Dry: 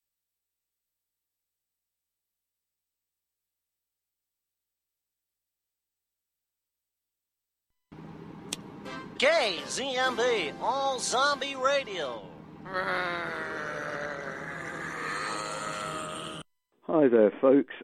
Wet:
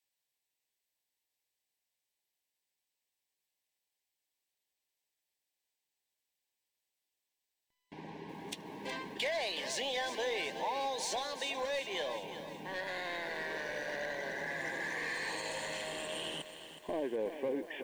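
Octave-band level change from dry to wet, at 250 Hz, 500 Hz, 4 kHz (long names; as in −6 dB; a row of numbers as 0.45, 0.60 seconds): −13.5, −10.0, −5.0 decibels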